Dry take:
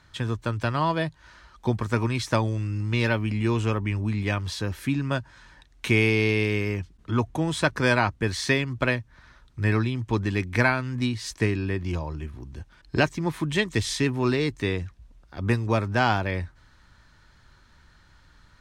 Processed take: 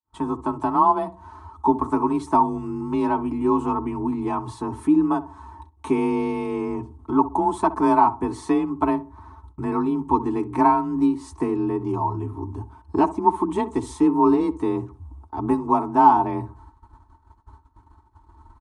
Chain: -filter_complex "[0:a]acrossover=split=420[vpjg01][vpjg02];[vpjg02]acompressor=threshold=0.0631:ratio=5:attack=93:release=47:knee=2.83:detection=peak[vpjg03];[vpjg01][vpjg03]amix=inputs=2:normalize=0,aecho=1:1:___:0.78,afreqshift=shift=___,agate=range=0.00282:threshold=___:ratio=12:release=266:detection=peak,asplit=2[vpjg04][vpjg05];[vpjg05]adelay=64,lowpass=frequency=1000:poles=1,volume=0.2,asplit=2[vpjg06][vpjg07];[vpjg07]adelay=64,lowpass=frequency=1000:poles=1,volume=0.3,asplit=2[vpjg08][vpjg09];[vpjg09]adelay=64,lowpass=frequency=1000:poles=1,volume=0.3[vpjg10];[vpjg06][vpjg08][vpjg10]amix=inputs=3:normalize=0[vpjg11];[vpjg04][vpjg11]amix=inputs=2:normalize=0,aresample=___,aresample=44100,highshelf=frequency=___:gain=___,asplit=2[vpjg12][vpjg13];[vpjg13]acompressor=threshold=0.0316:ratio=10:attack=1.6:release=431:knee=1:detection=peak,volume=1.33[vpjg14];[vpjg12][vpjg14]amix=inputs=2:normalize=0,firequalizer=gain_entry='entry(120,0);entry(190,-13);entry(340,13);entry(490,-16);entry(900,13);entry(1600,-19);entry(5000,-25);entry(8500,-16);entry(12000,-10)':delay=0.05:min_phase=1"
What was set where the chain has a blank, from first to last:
4.7, 30, 0.00316, 22050, 6100, 9